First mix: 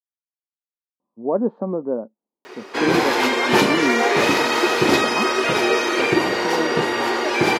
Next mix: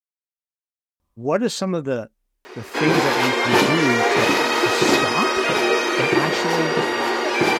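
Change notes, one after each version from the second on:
speech: remove Chebyshev band-pass filter 210–980 Hz, order 3
master: add high-pass filter 130 Hz 6 dB per octave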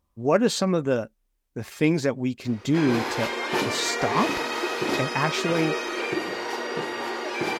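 speech: entry −1.00 s
background −9.0 dB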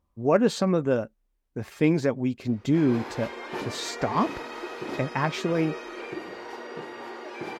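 background −7.5 dB
master: add high-shelf EQ 2,600 Hz −8 dB

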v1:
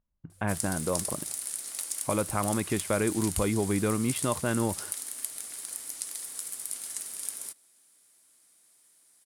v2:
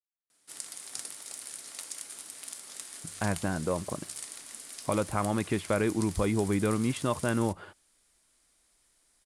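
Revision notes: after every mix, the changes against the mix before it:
speech: entry +2.80 s
master: add high-frequency loss of the air 53 metres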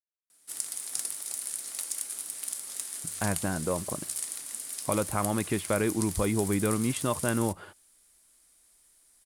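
master: remove high-frequency loss of the air 53 metres

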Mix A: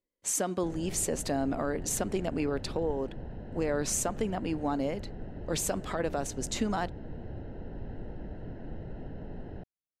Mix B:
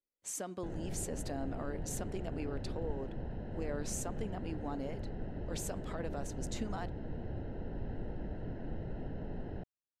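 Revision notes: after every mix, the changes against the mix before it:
speech −10.5 dB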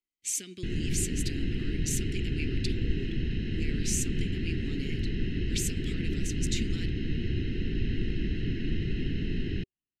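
background +11.0 dB
master: add drawn EQ curve 380 Hz 0 dB, 600 Hz −28 dB, 970 Hz −27 dB, 2,300 Hz +15 dB, 11,000 Hz +8 dB

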